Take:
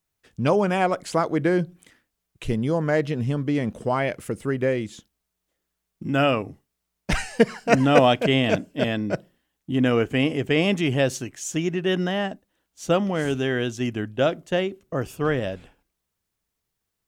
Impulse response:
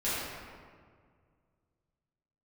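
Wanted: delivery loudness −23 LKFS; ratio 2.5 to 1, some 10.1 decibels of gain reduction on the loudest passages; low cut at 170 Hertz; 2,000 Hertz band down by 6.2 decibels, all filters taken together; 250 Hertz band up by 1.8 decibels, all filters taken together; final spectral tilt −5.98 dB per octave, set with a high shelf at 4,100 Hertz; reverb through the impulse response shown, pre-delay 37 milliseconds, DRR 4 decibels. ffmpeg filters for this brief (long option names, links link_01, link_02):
-filter_complex "[0:a]highpass=170,equalizer=frequency=250:width_type=o:gain=3.5,equalizer=frequency=2000:width_type=o:gain=-7.5,highshelf=frequency=4100:gain=-3.5,acompressor=threshold=-26dB:ratio=2.5,asplit=2[link_01][link_02];[1:a]atrim=start_sample=2205,adelay=37[link_03];[link_02][link_03]afir=irnorm=-1:irlink=0,volume=-13dB[link_04];[link_01][link_04]amix=inputs=2:normalize=0,volume=5dB"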